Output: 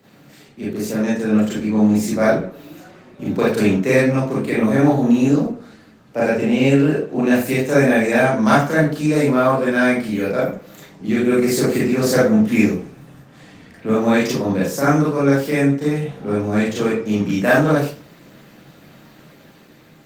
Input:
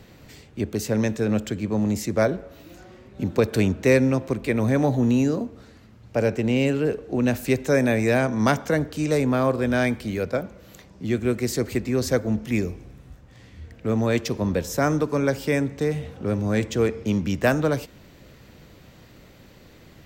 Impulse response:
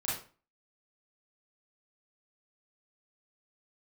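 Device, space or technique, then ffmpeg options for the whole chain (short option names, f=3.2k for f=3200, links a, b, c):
far-field microphone of a smart speaker: -filter_complex "[1:a]atrim=start_sample=2205[a];[0:a][a]afir=irnorm=-1:irlink=0,highpass=f=150:w=0.5412,highpass=f=150:w=1.3066,dynaudnorm=f=920:g=3:m=11.5dB,volume=-1dB" -ar 48000 -c:a libopus -b:a 24k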